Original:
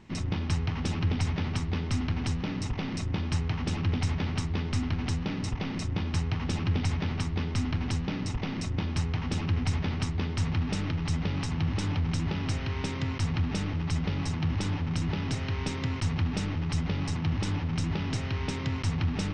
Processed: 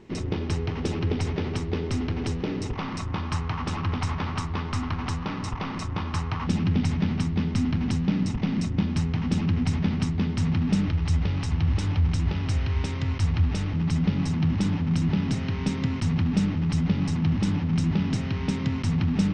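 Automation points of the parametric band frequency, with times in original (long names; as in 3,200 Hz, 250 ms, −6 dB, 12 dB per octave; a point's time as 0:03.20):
parametric band +12 dB 0.85 octaves
410 Hz
from 0:02.76 1,100 Hz
from 0:06.47 200 Hz
from 0:10.88 67 Hz
from 0:13.74 200 Hz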